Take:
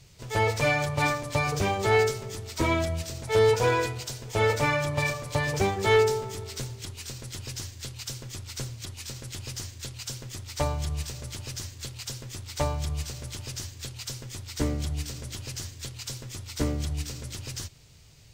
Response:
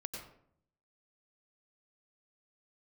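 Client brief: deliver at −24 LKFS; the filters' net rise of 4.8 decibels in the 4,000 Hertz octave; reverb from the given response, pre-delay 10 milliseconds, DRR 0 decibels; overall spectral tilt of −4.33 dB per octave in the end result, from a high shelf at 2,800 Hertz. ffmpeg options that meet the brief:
-filter_complex "[0:a]highshelf=frequency=2800:gain=-3.5,equalizer=frequency=4000:width_type=o:gain=9,asplit=2[link_01][link_02];[1:a]atrim=start_sample=2205,adelay=10[link_03];[link_02][link_03]afir=irnorm=-1:irlink=0,volume=1.5dB[link_04];[link_01][link_04]amix=inputs=2:normalize=0,volume=1.5dB"

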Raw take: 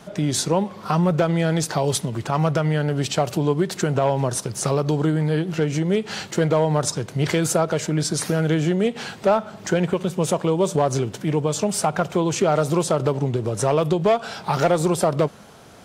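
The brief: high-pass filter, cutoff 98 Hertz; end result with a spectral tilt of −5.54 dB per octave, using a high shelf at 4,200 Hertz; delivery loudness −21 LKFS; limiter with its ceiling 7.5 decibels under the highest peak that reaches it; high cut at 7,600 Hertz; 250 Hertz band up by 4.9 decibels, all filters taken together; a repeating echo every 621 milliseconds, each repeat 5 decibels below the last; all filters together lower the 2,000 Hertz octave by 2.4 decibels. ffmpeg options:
ffmpeg -i in.wav -af "highpass=98,lowpass=7600,equalizer=frequency=250:width_type=o:gain=8.5,equalizer=frequency=2000:width_type=o:gain=-5,highshelf=frequency=4200:gain=7,alimiter=limit=-11dB:level=0:latency=1,aecho=1:1:621|1242|1863|2484|3105|3726|4347:0.562|0.315|0.176|0.0988|0.0553|0.031|0.0173,volume=-1dB" out.wav

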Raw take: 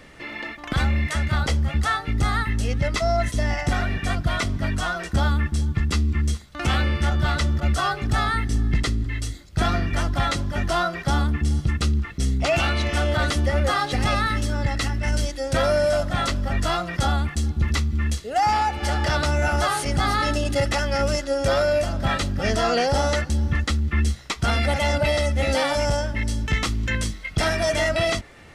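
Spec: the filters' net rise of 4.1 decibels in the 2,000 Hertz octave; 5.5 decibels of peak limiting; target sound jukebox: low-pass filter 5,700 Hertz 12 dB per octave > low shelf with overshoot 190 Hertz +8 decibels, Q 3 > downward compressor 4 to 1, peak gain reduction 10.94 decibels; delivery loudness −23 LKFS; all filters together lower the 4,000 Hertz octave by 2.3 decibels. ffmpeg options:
ffmpeg -i in.wav -af "equalizer=frequency=2000:width_type=o:gain=6,equalizer=frequency=4000:width_type=o:gain=-4,alimiter=limit=-15dB:level=0:latency=1,lowpass=5700,lowshelf=frequency=190:width_type=q:width=3:gain=8,acompressor=threshold=-20dB:ratio=4,volume=1.5dB" out.wav

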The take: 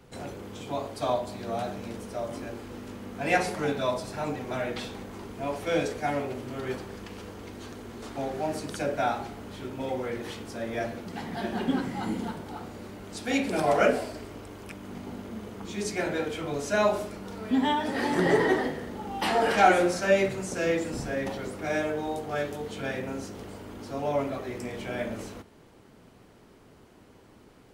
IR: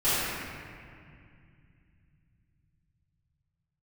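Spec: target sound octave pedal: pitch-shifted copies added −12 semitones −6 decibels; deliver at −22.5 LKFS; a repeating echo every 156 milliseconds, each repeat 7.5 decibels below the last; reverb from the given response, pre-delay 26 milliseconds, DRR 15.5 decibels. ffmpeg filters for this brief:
-filter_complex "[0:a]aecho=1:1:156|312|468|624|780:0.422|0.177|0.0744|0.0312|0.0131,asplit=2[link_01][link_02];[1:a]atrim=start_sample=2205,adelay=26[link_03];[link_02][link_03]afir=irnorm=-1:irlink=0,volume=-30.5dB[link_04];[link_01][link_04]amix=inputs=2:normalize=0,asplit=2[link_05][link_06];[link_06]asetrate=22050,aresample=44100,atempo=2,volume=-6dB[link_07];[link_05][link_07]amix=inputs=2:normalize=0,volume=5dB"

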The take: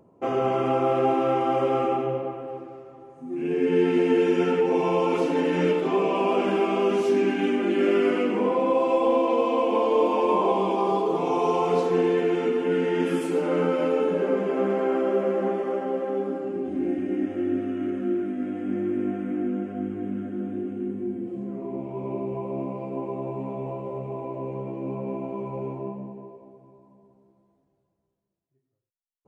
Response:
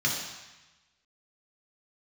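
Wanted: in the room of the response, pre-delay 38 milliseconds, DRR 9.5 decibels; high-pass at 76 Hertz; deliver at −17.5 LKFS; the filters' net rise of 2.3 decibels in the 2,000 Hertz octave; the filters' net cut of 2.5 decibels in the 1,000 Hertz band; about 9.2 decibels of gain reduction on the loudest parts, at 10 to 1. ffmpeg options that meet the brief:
-filter_complex "[0:a]highpass=76,equalizer=frequency=1000:width_type=o:gain=-4,equalizer=frequency=2000:width_type=o:gain=4,acompressor=threshold=-27dB:ratio=10,asplit=2[link_01][link_02];[1:a]atrim=start_sample=2205,adelay=38[link_03];[link_02][link_03]afir=irnorm=-1:irlink=0,volume=-20dB[link_04];[link_01][link_04]amix=inputs=2:normalize=0,volume=13.5dB"

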